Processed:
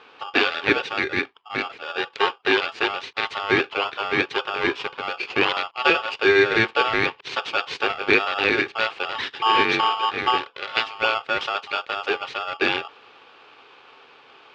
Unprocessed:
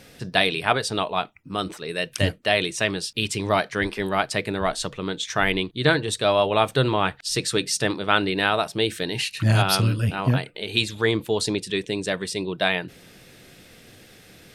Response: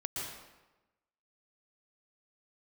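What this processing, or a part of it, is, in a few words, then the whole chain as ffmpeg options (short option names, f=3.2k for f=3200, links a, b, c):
ring modulator pedal into a guitar cabinet: -af "aeval=exprs='val(0)*sgn(sin(2*PI*1000*n/s))':c=same,highpass=110,equalizer=f=190:t=q:w=4:g=-9,equalizer=f=410:t=q:w=4:g=9,equalizer=f=620:t=q:w=4:g=-7,equalizer=f=2.4k:t=q:w=4:g=5,lowpass=f=3.7k:w=0.5412,lowpass=f=3.7k:w=1.3066"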